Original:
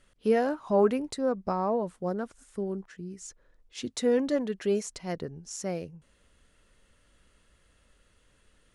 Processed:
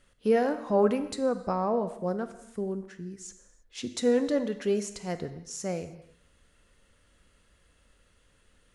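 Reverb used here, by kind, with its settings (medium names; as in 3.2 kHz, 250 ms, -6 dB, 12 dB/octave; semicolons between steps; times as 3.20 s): gated-style reverb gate 350 ms falling, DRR 9.5 dB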